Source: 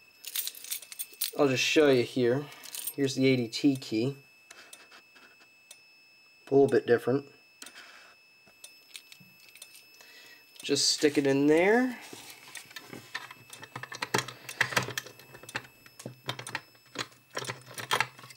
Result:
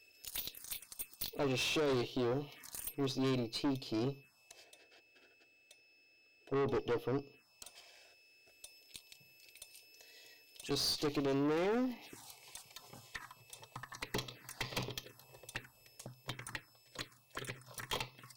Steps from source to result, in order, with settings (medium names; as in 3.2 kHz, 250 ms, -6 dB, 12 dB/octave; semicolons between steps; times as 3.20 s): 4.64–6.71 s: peaking EQ 11 kHz -10.5 dB 1.9 oct; touch-sensitive phaser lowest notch 160 Hz, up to 1.6 kHz, full sweep at -30.5 dBFS; valve stage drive 29 dB, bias 0.6; trim -1.5 dB